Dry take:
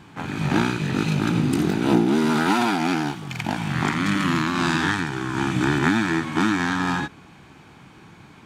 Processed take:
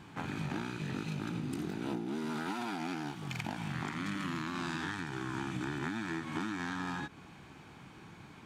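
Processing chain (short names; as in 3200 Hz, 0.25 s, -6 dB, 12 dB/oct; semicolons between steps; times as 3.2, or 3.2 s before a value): compressor 6:1, threshold -29 dBFS, peak gain reduction 15 dB; gain -5.5 dB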